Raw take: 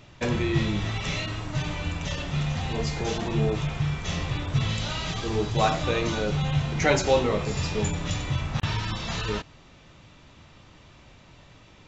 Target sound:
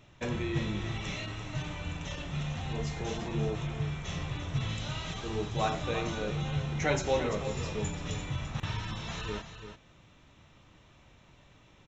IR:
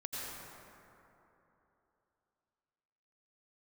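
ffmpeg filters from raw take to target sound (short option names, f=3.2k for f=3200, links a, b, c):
-af "bandreject=f=4.7k:w=5.9,aecho=1:1:341:0.316,volume=-7.5dB"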